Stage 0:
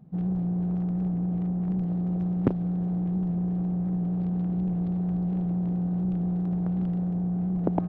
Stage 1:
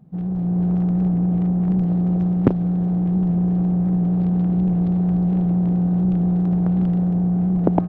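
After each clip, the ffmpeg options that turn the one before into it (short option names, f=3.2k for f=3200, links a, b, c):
-af "dynaudnorm=f=300:g=3:m=6.5dB,volume=2dB"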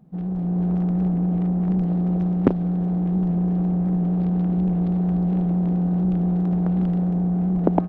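-af "equalizer=f=110:t=o:w=0.63:g=-12.5"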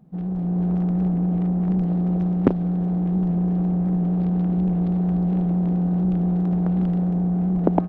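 -af anull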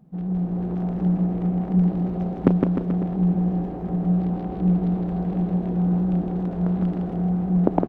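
-af "aecho=1:1:160|304|433.6|550.2|655.2:0.631|0.398|0.251|0.158|0.1,volume=-1dB"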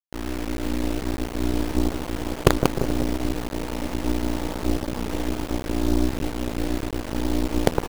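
-af "aecho=1:1:185|370|555|740|925|1110:0.531|0.25|0.117|0.0551|0.0259|0.0122,aeval=exprs='val(0)*sin(2*PI*120*n/s)':c=same,acrusher=bits=3:dc=4:mix=0:aa=0.000001,volume=3.5dB"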